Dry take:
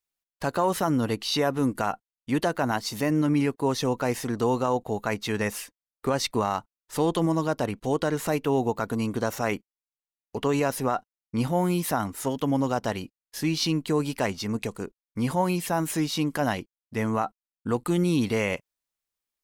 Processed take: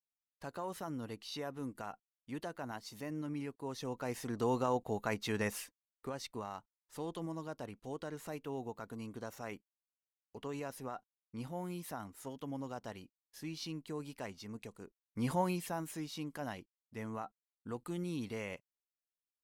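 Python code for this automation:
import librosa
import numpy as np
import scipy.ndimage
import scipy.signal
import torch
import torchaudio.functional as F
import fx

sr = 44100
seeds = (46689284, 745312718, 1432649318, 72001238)

y = fx.gain(x, sr, db=fx.line((3.64, -17.5), (4.55, -8.0), (5.62, -8.0), (6.17, -17.5), (14.81, -17.5), (15.32, -7.0), (15.93, -16.0)))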